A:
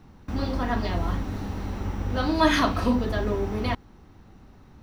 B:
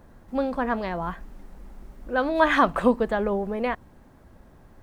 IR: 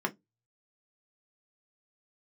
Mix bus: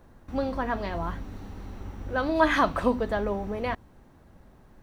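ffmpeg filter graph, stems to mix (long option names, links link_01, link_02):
-filter_complex "[0:a]bandreject=frequency=5100:width=18,volume=-10dB[link_01];[1:a]volume=-1,volume=-3.5dB[link_02];[link_01][link_02]amix=inputs=2:normalize=0"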